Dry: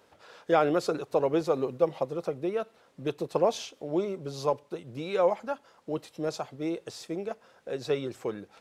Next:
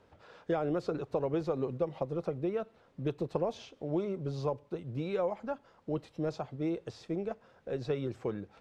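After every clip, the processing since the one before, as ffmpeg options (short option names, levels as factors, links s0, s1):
-filter_complex "[0:a]acrossover=split=870|6700[s0][s1][s2];[s0]acompressor=threshold=0.0398:ratio=4[s3];[s1]acompressor=threshold=0.0112:ratio=4[s4];[s2]acompressor=threshold=0.00141:ratio=4[s5];[s3][s4][s5]amix=inputs=3:normalize=0,aemphasis=mode=reproduction:type=bsi,volume=0.668"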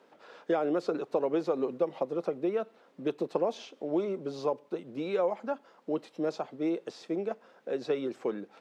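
-af "highpass=f=220:w=0.5412,highpass=f=220:w=1.3066,volume=1.5"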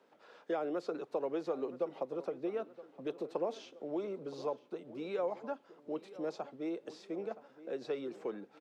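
-filter_complex "[0:a]acrossover=split=280|3300[s0][s1][s2];[s0]alimiter=level_in=5.31:limit=0.0631:level=0:latency=1:release=114,volume=0.188[s3];[s3][s1][s2]amix=inputs=3:normalize=0,asplit=2[s4][s5];[s5]adelay=970,lowpass=f=3100:p=1,volume=0.158,asplit=2[s6][s7];[s7]adelay=970,lowpass=f=3100:p=1,volume=0.51,asplit=2[s8][s9];[s9]adelay=970,lowpass=f=3100:p=1,volume=0.51,asplit=2[s10][s11];[s11]adelay=970,lowpass=f=3100:p=1,volume=0.51,asplit=2[s12][s13];[s13]adelay=970,lowpass=f=3100:p=1,volume=0.51[s14];[s4][s6][s8][s10][s12][s14]amix=inputs=6:normalize=0,volume=0.473"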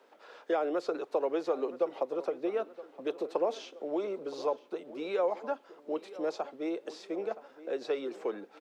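-af "highpass=330,volume=2.11"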